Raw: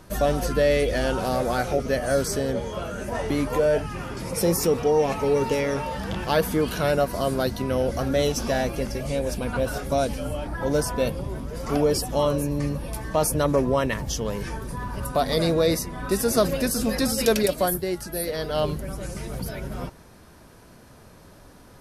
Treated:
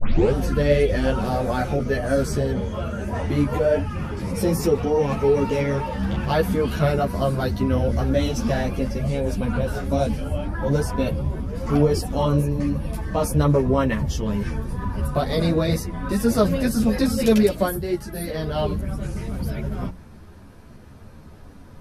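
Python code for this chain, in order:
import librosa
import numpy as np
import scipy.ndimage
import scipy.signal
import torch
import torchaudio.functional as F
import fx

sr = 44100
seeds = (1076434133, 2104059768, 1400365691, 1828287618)

y = fx.tape_start_head(x, sr, length_s=0.33)
y = fx.bass_treble(y, sr, bass_db=9, treble_db=-6)
y = fx.hum_notches(y, sr, base_hz=60, count=3)
y = fx.ensemble(y, sr)
y = F.gain(torch.from_numpy(y), 3.0).numpy()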